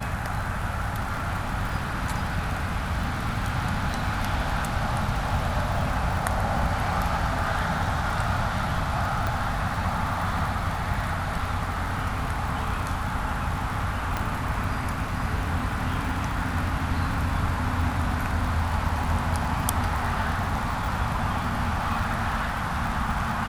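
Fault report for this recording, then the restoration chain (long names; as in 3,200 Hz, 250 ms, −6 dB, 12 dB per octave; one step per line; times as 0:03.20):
surface crackle 56 per second −31 dBFS
0:09.27: click −14 dBFS
0:14.17: click −12 dBFS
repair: click removal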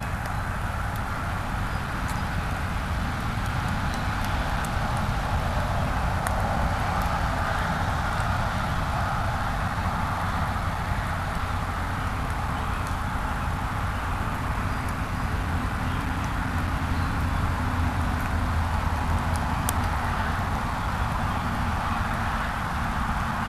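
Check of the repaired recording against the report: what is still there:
0:14.17: click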